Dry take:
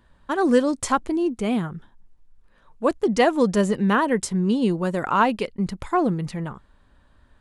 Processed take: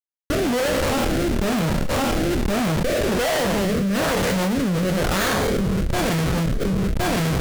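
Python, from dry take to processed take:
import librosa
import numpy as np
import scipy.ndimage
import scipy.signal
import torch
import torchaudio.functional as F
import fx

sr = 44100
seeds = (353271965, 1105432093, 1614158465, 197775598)

y = fx.spec_trails(x, sr, decay_s=1.35)
y = fx.sample_hold(y, sr, seeds[0], rate_hz=2700.0, jitter_pct=0, at=(5.16, 6.01), fade=0.02)
y = fx.graphic_eq_31(y, sr, hz=(100, 315, 630, 1000, 2500, 5000, 8000), db=(11, -11, 5, -10, 7, -4, -8))
y = fx.echo_feedback(y, sr, ms=578, feedback_pct=50, wet_db=-21.0)
y = fx.schmitt(y, sr, flips_db=-23.0)
y = fx.rotary(y, sr, hz=1.1)
y = y + 10.0 ** (-18.5 / 20.0) * np.pad(y, (int(1066 * sr / 1000.0), 0))[:len(y)]
y = fx.chorus_voices(y, sr, voices=4, hz=0.92, base_ms=28, depth_ms=3.0, mix_pct=30)
y = fx.env_flatten(y, sr, amount_pct=100)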